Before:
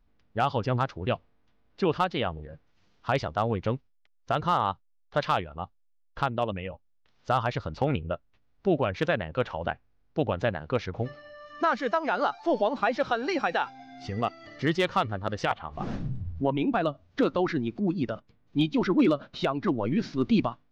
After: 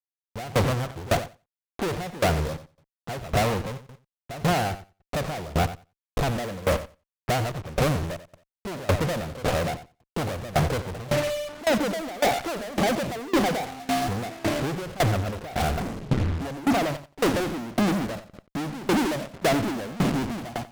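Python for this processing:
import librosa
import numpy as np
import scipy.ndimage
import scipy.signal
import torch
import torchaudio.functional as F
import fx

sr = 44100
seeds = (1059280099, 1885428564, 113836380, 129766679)

y = scipy.signal.sosfilt(scipy.signal.cheby1(6, 1.0, 740.0, 'lowpass', fs=sr, output='sos'), x)
y = fx.leveller(y, sr, passes=5)
y = fx.over_compress(y, sr, threshold_db=-26.0, ratio=-0.5, at=(15.03, 17.05))
y = fx.fuzz(y, sr, gain_db=45.0, gate_db=-52.0)
y = fx.echo_feedback(y, sr, ms=90, feedback_pct=18, wet_db=-10)
y = fx.tremolo_decay(y, sr, direction='decaying', hz=1.8, depth_db=21)
y = F.gain(torch.from_numpy(y), -4.5).numpy()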